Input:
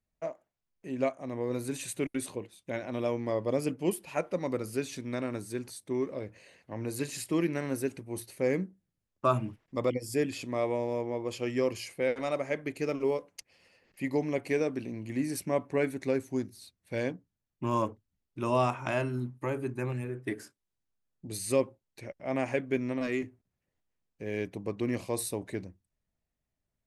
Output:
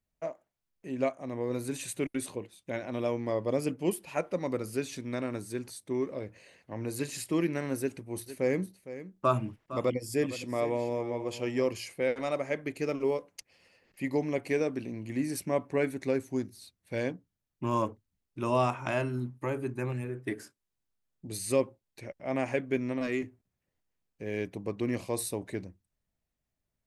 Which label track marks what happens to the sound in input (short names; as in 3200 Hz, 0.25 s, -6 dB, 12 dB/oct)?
7.800000	11.680000	echo 0.46 s -13.5 dB